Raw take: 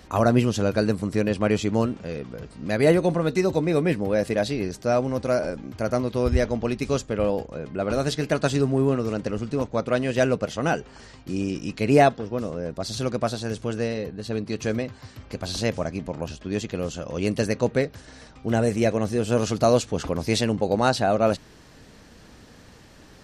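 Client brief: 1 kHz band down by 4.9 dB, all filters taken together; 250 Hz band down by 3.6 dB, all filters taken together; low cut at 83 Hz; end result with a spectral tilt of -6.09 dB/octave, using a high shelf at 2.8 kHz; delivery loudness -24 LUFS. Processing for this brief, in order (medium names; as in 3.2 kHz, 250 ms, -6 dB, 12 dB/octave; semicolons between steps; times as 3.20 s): high-pass 83 Hz; peaking EQ 250 Hz -4 dB; peaking EQ 1 kHz -7 dB; treble shelf 2.8 kHz -5.5 dB; trim +3.5 dB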